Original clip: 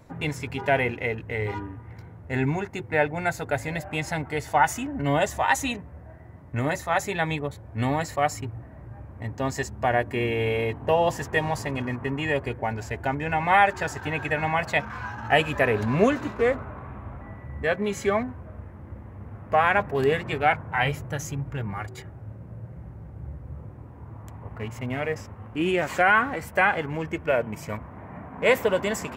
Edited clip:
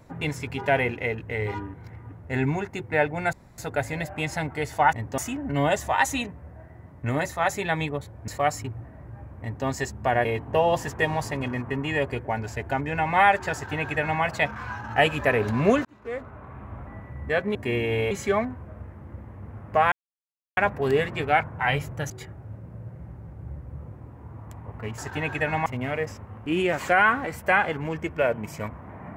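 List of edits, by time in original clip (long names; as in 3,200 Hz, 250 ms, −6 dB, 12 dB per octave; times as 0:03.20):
0:01.74–0:02.12: reverse
0:03.33: splice in room tone 0.25 s
0:07.78–0:08.06: remove
0:09.19–0:09.44: duplicate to 0:04.68
0:10.03–0:10.59: move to 0:17.89
0:13.88–0:14.56: duplicate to 0:24.75
0:16.19–0:17.13: fade in
0:19.70: splice in silence 0.65 s
0:21.23–0:21.87: remove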